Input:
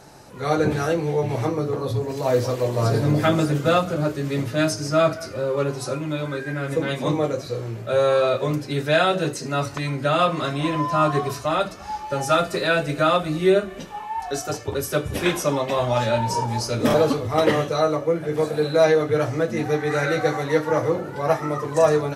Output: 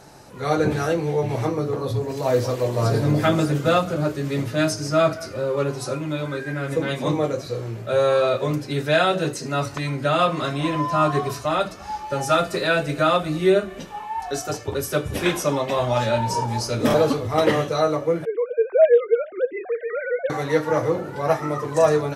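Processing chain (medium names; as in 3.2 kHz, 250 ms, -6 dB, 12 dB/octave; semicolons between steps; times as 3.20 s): 18.25–20.30 s: formants replaced by sine waves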